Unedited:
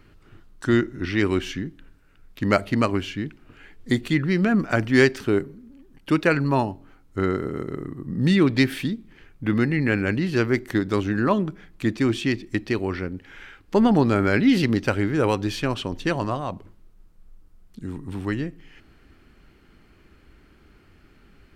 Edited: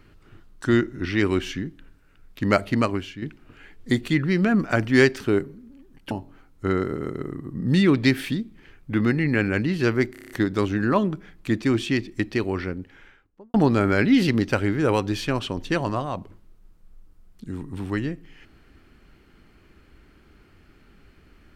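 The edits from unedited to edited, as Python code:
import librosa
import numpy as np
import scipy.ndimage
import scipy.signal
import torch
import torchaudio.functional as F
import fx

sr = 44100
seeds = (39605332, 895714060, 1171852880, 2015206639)

y = fx.studio_fade_out(x, sr, start_s=12.98, length_s=0.91)
y = fx.edit(y, sr, fx.fade_out_to(start_s=2.77, length_s=0.45, floor_db=-9.0),
    fx.cut(start_s=6.11, length_s=0.53),
    fx.stutter(start_s=10.65, slice_s=0.03, count=7), tone=tone)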